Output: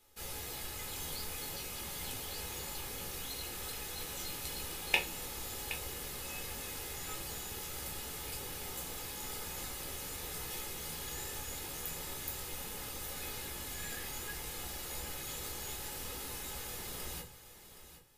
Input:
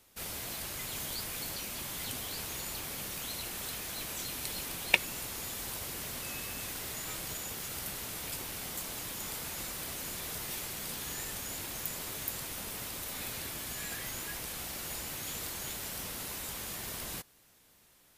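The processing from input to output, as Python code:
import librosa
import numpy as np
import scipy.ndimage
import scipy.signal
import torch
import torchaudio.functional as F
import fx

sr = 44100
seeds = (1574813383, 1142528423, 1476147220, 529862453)

p1 = x + 0.4 * np.pad(x, (int(2.4 * sr / 1000.0), 0))[:len(x)]
p2 = p1 + fx.echo_single(p1, sr, ms=770, db=-12.5, dry=0)
p3 = fx.room_shoebox(p2, sr, seeds[0], volume_m3=120.0, walls='furnished', distance_m=1.4)
y = p3 * librosa.db_to_amplitude(-6.5)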